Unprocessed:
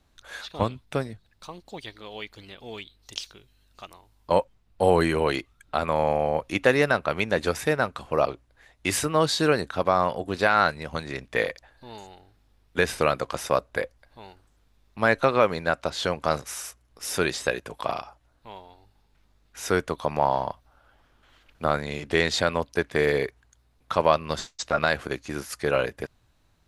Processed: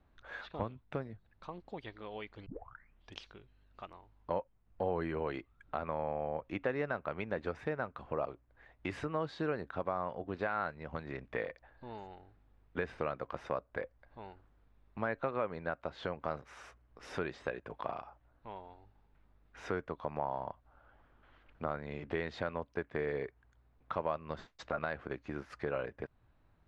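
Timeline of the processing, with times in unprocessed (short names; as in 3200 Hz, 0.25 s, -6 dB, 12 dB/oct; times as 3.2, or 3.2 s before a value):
2.46 tape start 0.72 s
whole clip: LPF 1900 Hz 12 dB/oct; compressor 2:1, threshold -37 dBFS; gain -3 dB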